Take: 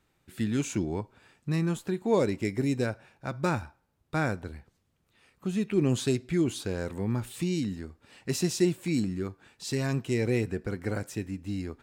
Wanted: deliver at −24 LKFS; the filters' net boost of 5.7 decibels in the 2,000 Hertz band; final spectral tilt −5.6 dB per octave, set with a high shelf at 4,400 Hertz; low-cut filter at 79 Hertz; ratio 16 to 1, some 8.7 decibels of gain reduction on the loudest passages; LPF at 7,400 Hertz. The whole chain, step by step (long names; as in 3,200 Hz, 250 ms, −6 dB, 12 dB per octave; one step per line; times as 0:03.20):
high-pass filter 79 Hz
low-pass filter 7,400 Hz
parametric band 2,000 Hz +8 dB
high-shelf EQ 4,400 Hz −3 dB
downward compressor 16 to 1, threshold −27 dBFS
level +10.5 dB